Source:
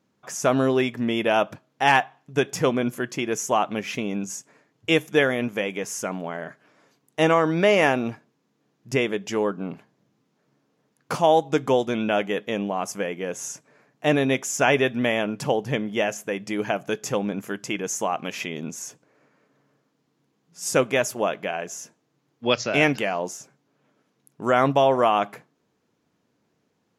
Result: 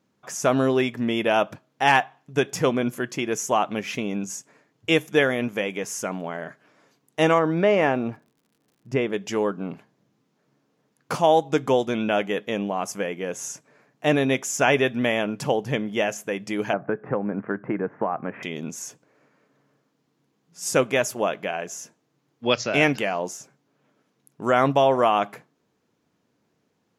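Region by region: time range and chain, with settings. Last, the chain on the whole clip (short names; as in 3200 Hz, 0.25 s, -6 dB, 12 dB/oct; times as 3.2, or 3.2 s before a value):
7.38–9.12 LPF 1500 Hz 6 dB/oct + crackle 97/s -52 dBFS
16.73–18.43 steep low-pass 1800 Hz + three-band squash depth 100%
whole clip: dry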